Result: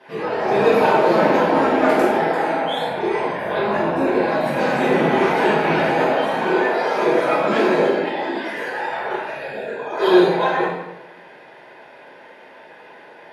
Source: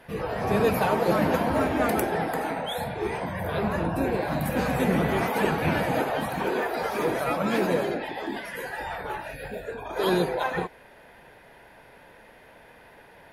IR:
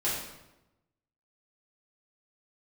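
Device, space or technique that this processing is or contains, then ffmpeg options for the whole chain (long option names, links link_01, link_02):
supermarket ceiling speaker: -filter_complex "[0:a]highpass=270,lowpass=5700[link_01];[1:a]atrim=start_sample=2205[link_02];[link_01][link_02]afir=irnorm=-1:irlink=0"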